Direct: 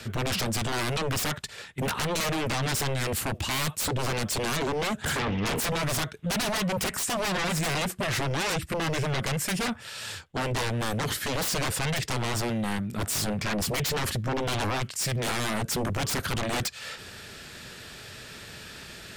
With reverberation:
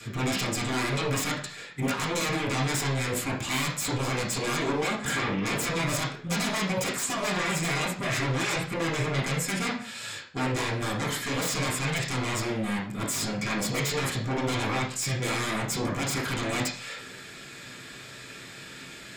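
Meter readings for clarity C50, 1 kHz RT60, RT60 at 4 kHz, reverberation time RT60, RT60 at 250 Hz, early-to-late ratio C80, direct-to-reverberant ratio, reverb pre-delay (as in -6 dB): 6.5 dB, 0.45 s, 0.40 s, 0.50 s, 0.50 s, 11.0 dB, -9.0 dB, 3 ms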